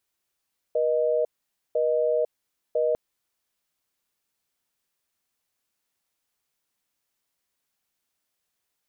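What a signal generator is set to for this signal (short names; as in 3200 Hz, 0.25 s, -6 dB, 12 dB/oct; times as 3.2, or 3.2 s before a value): call progress tone busy tone, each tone -23 dBFS 2.20 s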